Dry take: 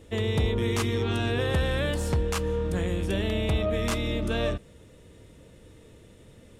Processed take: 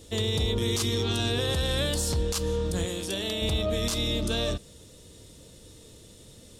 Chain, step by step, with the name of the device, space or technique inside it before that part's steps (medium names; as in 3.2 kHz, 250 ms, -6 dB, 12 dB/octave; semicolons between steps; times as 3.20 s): over-bright horn tweeter (resonant high shelf 3.1 kHz +10.5 dB, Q 1.5; peak limiter -18 dBFS, peak gain reduction 9.5 dB); 2.85–3.42 s: high-pass 310 Hz 6 dB/octave